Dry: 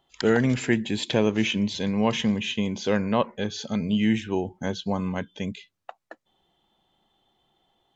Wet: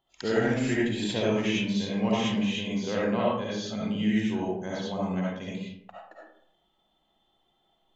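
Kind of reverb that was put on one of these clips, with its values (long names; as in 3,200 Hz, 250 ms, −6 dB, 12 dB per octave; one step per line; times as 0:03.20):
comb and all-pass reverb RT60 0.7 s, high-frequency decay 0.5×, pre-delay 30 ms, DRR −6.5 dB
level −9.5 dB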